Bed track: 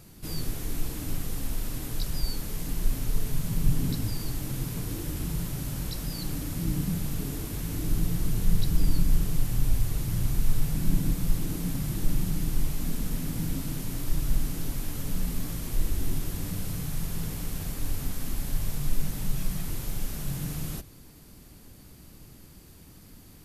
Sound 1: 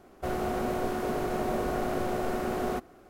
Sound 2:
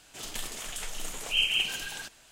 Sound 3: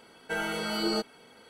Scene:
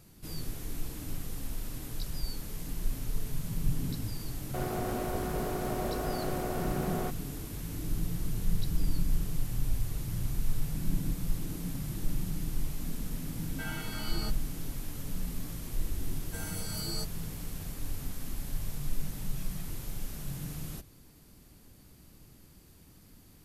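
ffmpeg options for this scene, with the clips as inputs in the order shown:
ffmpeg -i bed.wav -i cue0.wav -i cue1.wav -i cue2.wav -filter_complex "[3:a]asplit=2[link_01][link_02];[0:a]volume=-6dB[link_03];[link_01]equalizer=frequency=470:width_type=o:width=1.1:gain=-10[link_04];[link_02]aexciter=amount=6.2:drive=7:freq=4700[link_05];[1:a]atrim=end=3.09,asetpts=PTS-STARTPTS,volume=-4.5dB,afade=type=in:duration=0.004:curve=hsin,afade=type=out:start_time=3.086:duration=0.004:curve=hsin,adelay=4310[link_06];[link_04]atrim=end=1.49,asetpts=PTS-STARTPTS,volume=-7.5dB,afade=type=in:duration=0.004:curve=hsin,afade=type=out:start_time=1.486:duration=0.004:curve=hsin,adelay=13290[link_07];[link_05]atrim=end=1.49,asetpts=PTS-STARTPTS,volume=-14.5dB,afade=type=in:duration=0.004:curve=hsin,afade=type=out:start_time=1.486:duration=0.004:curve=hsin,adelay=16030[link_08];[link_03][link_06][link_07][link_08]amix=inputs=4:normalize=0" out.wav

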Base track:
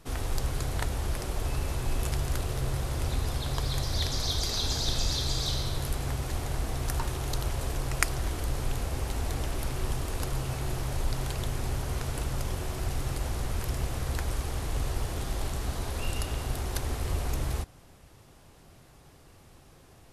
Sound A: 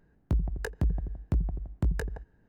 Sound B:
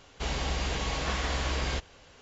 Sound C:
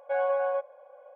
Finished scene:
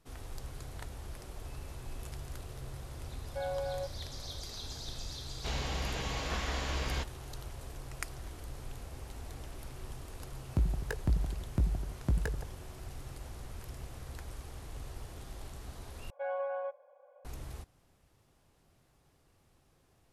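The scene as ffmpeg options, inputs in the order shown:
ffmpeg -i bed.wav -i cue0.wav -i cue1.wav -i cue2.wav -filter_complex "[3:a]asplit=2[link_01][link_02];[0:a]volume=-13.5dB[link_03];[link_01]asuperstop=centerf=1200:order=4:qfactor=2.8[link_04];[link_03]asplit=2[link_05][link_06];[link_05]atrim=end=16.104[link_07];[link_02]atrim=end=1.15,asetpts=PTS-STARTPTS,volume=-9dB[link_08];[link_06]atrim=start=17.246[link_09];[link_04]atrim=end=1.15,asetpts=PTS-STARTPTS,volume=-9.5dB,afade=type=in:duration=0.004:curve=hsin,afade=type=out:start_time=1.146:duration=0.004:curve=hsin,adelay=3260[link_10];[2:a]atrim=end=2.21,asetpts=PTS-STARTPTS,volume=-5dB,afade=type=in:duration=0.004:curve=hsin,afade=type=out:start_time=2.206:duration=0.004:curve=hsin,adelay=5240[link_11];[1:a]atrim=end=2.48,asetpts=PTS-STARTPTS,volume=-2.5dB,afade=type=in:duration=0.004:curve=hsin,afade=type=out:start_time=2.476:duration=0.004:curve=hsin,adelay=452466S[link_12];[link_07][link_08]acrossfade=duration=0.004:curve1=hsin:curve2=hsin[link_13];[link_13][link_09]acrossfade=duration=0.004:curve1=hsin:curve2=hsin[link_14];[link_14][link_10][link_11][link_12]amix=inputs=4:normalize=0" out.wav

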